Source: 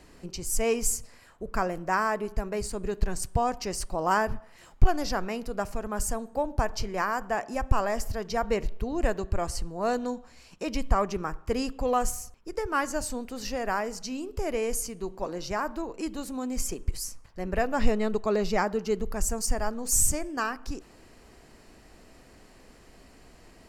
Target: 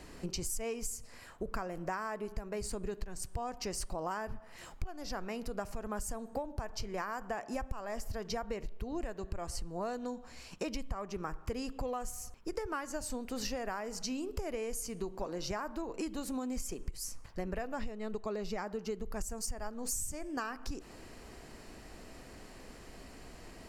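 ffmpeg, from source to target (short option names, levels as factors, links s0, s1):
-af "acompressor=threshold=0.0158:ratio=16,volume=1.33"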